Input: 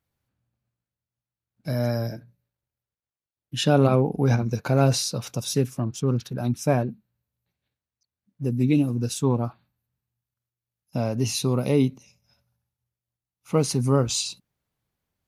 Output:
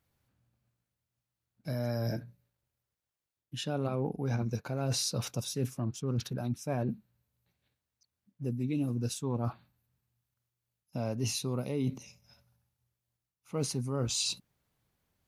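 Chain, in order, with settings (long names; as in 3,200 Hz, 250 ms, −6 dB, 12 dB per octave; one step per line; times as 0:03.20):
reversed playback
downward compressor 6 to 1, threshold −33 dBFS, peak gain reduction 18.5 dB
reversed playback
level +3 dB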